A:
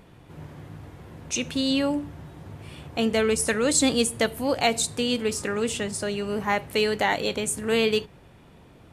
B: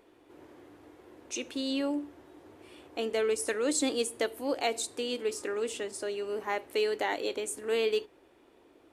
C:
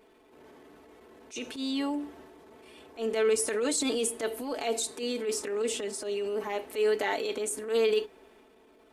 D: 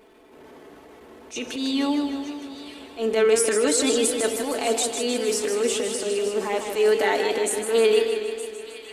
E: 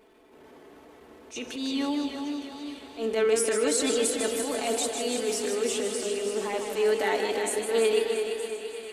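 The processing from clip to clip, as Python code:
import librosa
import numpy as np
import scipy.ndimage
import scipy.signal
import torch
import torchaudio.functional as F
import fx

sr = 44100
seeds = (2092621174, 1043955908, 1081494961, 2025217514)

y1 = fx.low_shelf_res(x, sr, hz=230.0, db=-12.0, q=3.0)
y1 = y1 * librosa.db_to_amplitude(-9.0)
y2 = y1 + 0.79 * np.pad(y1, (int(4.6 * sr / 1000.0), 0))[:len(y1)]
y2 = fx.transient(y2, sr, attack_db=-11, sustain_db=4)
y3 = fx.echo_wet_highpass(y2, sr, ms=917, feedback_pct=35, hz=1600.0, wet_db=-13.5)
y3 = fx.echo_warbled(y3, sr, ms=155, feedback_pct=63, rate_hz=2.8, cents=95, wet_db=-7)
y3 = y3 * librosa.db_to_amplitude(6.5)
y4 = fx.echo_feedback(y3, sr, ms=339, feedback_pct=52, wet_db=-8.0)
y4 = y4 * librosa.db_to_amplitude(-5.0)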